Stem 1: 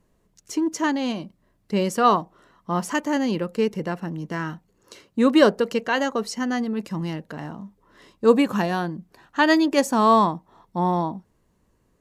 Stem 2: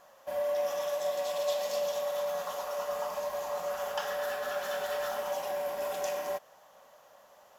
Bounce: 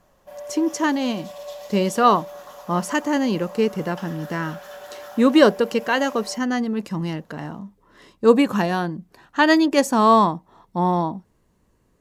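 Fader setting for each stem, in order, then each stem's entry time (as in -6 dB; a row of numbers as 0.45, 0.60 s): +2.0, -5.0 dB; 0.00, 0.00 s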